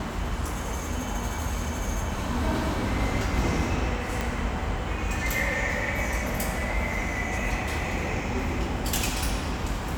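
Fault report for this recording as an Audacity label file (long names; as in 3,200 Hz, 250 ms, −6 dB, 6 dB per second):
4.210000	4.210000	click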